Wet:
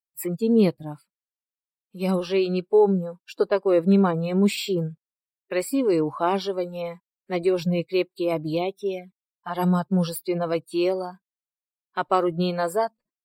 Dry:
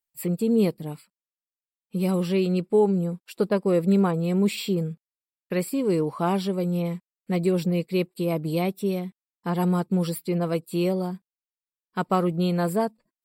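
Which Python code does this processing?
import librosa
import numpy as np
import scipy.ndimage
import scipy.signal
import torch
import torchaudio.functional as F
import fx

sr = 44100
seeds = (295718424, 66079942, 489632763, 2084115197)

y = fx.env_flanger(x, sr, rest_ms=2.2, full_db=-20.5, at=(8.56, 9.49), fade=0.02)
y = fx.noise_reduce_blind(y, sr, reduce_db=16)
y = y * librosa.db_to_amplitude(3.0)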